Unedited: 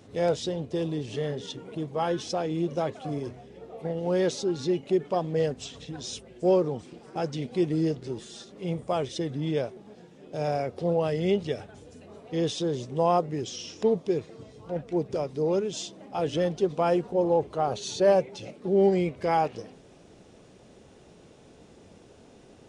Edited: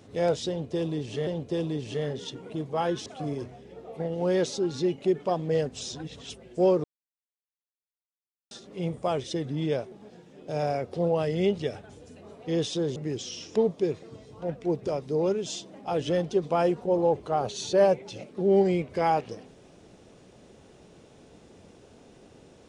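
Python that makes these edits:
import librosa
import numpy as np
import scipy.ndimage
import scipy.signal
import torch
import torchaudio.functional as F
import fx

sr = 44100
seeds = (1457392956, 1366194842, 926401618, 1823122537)

y = fx.edit(x, sr, fx.repeat(start_s=0.49, length_s=0.78, count=2),
    fx.cut(start_s=2.28, length_s=0.63),
    fx.reverse_span(start_s=5.66, length_s=0.49),
    fx.silence(start_s=6.69, length_s=1.67),
    fx.cut(start_s=12.81, length_s=0.42), tone=tone)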